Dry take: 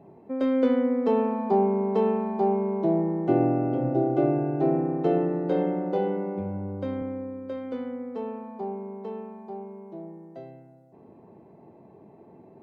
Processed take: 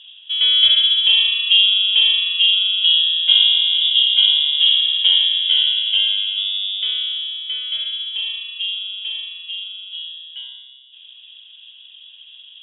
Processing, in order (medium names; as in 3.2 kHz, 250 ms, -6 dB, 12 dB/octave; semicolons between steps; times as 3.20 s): level-controlled noise filter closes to 2.4 kHz; frequency inversion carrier 3.6 kHz; treble shelf 2.7 kHz +7.5 dB; trim +4 dB